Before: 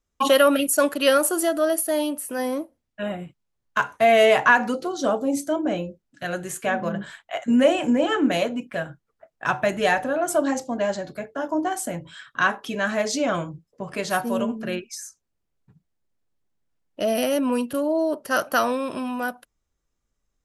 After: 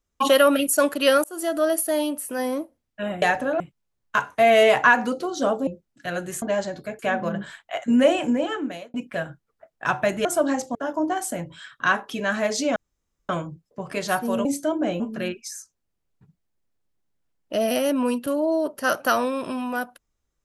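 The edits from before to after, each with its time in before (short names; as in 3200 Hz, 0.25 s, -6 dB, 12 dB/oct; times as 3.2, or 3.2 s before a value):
1.24–1.58 fade in
5.29–5.84 move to 14.47
7.77–8.54 fade out linear
9.85–10.23 move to 3.22
10.73–11.3 move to 6.59
13.31 insert room tone 0.53 s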